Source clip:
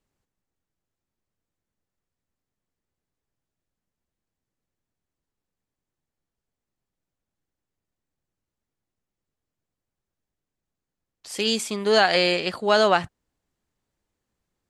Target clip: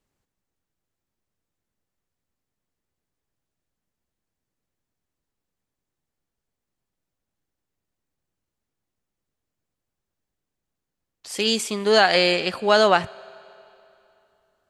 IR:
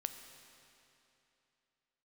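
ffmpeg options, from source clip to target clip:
-filter_complex "[0:a]asplit=2[a][b];[1:a]atrim=start_sample=2205,lowshelf=f=150:g=-11[c];[b][c]afir=irnorm=-1:irlink=0,volume=-10dB[d];[a][d]amix=inputs=2:normalize=0"

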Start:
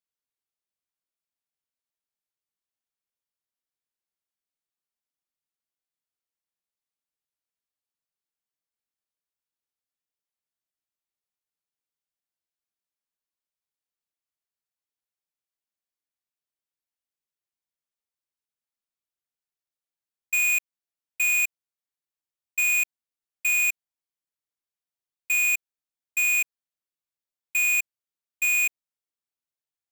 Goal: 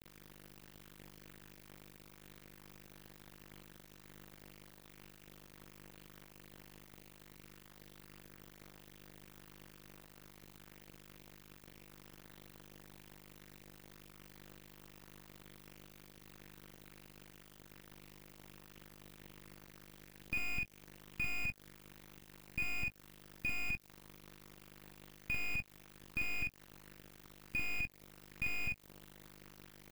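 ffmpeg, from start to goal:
-filter_complex "[0:a]aeval=exprs='val(0)+0.5*0.00708*sgn(val(0))':c=same,equalizer=f=9.2k:t=o:w=2.3:g=-8.5,bandreject=f=7.8k:w=14,aeval=exprs='val(0)+0.00355*(sin(2*PI*50*n/s)+sin(2*PI*2*50*n/s)/2+sin(2*PI*3*50*n/s)/3+sin(2*PI*4*50*n/s)/4+sin(2*PI*5*50*n/s)/5)':c=same,equalizer=f=250:t=o:w=1:g=4,equalizer=f=500:t=o:w=1:g=-11,equalizer=f=1k:t=o:w=1:g=-4,equalizer=f=8k:t=o:w=1:g=-4,asplit=2[a][b];[b]acompressor=threshold=-35dB:ratio=6,volume=-2dB[c];[a][c]amix=inputs=2:normalize=0,aeval=exprs='0.119*(cos(1*acos(clip(val(0)/0.119,-1,1)))-cos(1*PI/2))+0.0473*(cos(8*acos(clip(val(0)/0.119,-1,1)))-cos(8*PI/2))':c=same,acrusher=bits=4:mix=0:aa=0.5,acrossover=split=2900[d][e];[e]acompressor=threshold=-46dB:ratio=4:attack=1:release=60[f];[d][f]amix=inputs=2:normalize=0,aecho=1:1:46|65:0.708|0.15,volume=-8dB"

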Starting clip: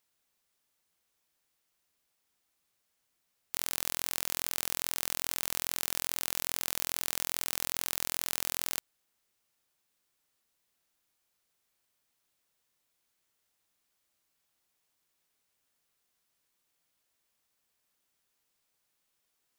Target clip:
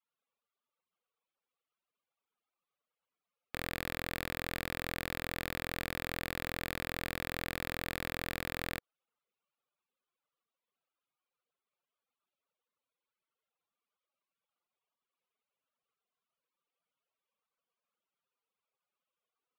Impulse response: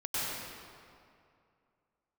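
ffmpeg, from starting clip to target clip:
-af "afftfilt=real='re*gte(hypot(re,im),0.0001)':imag='im*gte(hypot(re,im),0.0001)':win_size=1024:overlap=0.75,highpass=170,equalizer=f=310:t=q:w=4:g=-6,equalizer=f=500:t=q:w=4:g=6,equalizer=f=1.2k:t=q:w=4:g=7,equalizer=f=1.8k:t=q:w=4:g=-8,lowpass=f=3.3k:w=0.5412,lowpass=f=3.3k:w=1.3066,aeval=exprs='0.0891*(cos(1*acos(clip(val(0)/0.0891,-1,1)))-cos(1*PI/2))+0.0126*(cos(3*acos(clip(val(0)/0.0891,-1,1)))-cos(3*PI/2))+0.0447*(cos(6*acos(clip(val(0)/0.0891,-1,1)))-cos(6*PI/2))+0.002*(cos(8*acos(clip(val(0)/0.0891,-1,1)))-cos(8*PI/2))':c=same"

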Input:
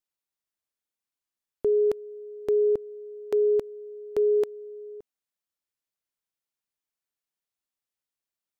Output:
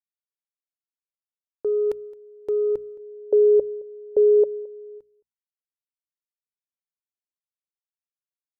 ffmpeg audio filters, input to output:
-filter_complex "[0:a]agate=range=-33dB:threshold=-35dB:ratio=3:detection=peak,bandreject=f=60:t=h:w=6,bandreject=f=120:t=h:w=6,bandreject=f=180:t=h:w=6,bandreject=f=240:t=h:w=6,aecho=1:1:2.2:0.38,acontrast=50,asplit=3[a][b][c];[a]afade=t=out:st=2.98:d=0.02[d];[b]lowpass=f=560:t=q:w=4.9,afade=t=in:st=2.98:d=0.02,afade=t=out:st=4.98:d=0.02[e];[c]afade=t=in:st=4.98:d=0.02[f];[d][e][f]amix=inputs=3:normalize=0,aecho=1:1:218:0.075,volume=-8.5dB"

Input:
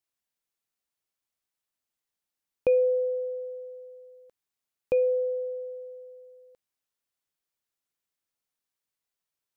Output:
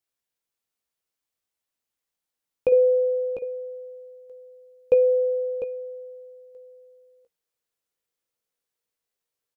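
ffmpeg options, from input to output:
-filter_complex "[0:a]asetnsamples=n=441:p=0,asendcmd='2.72 equalizer g 11',equalizer=f=480:t=o:w=0.31:g=4,asplit=2[a][b];[b]adelay=17,volume=-8dB[c];[a][c]amix=inputs=2:normalize=0,aecho=1:1:700:0.355"

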